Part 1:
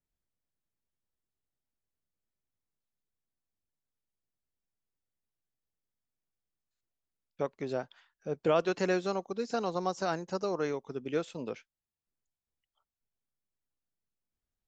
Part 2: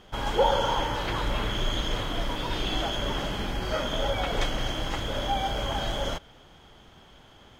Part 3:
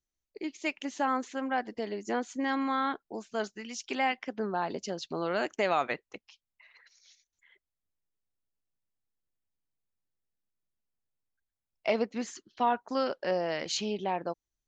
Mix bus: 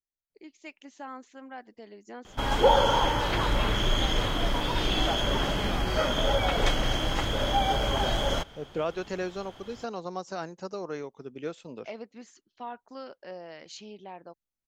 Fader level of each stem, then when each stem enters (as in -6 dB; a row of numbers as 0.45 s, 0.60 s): -3.5 dB, +2.5 dB, -12.0 dB; 0.30 s, 2.25 s, 0.00 s